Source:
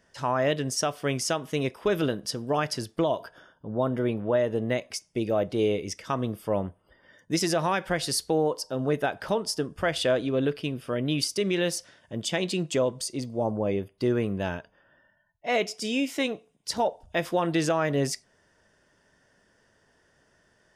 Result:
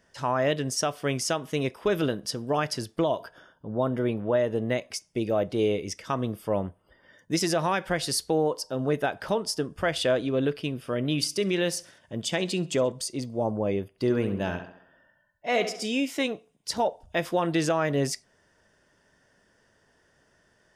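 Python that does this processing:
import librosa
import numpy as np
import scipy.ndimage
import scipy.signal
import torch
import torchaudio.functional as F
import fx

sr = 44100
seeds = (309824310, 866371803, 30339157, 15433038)

y = fx.echo_feedback(x, sr, ms=66, feedback_pct=46, wet_db=-22, at=(10.8, 12.92))
y = fx.echo_tape(y, sr, ms=69, feedback_pct=53, wet_db=-7.5, lp_hz=3500.0, drive_db=17.0, wow_cents=15, at=(13.88, 15.85))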